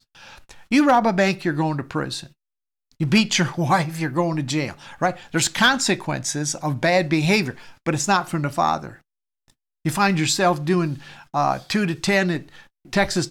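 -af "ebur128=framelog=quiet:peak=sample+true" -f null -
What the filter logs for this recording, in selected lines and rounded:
Integrated loudness:
  I:         -21.2 LUFS
  Threshold: -31.8 LUFS
Loudness range:
  LRA:         2.2 LU
  Threshold: -41.9 LUFS
  LRA low:   -23.0 LUFS
  LRA high:  -20.8 LUFS
Sample peak:
  Peak:       -8.2 dBFS
True peak:
  Peak:       -8.1 dBFS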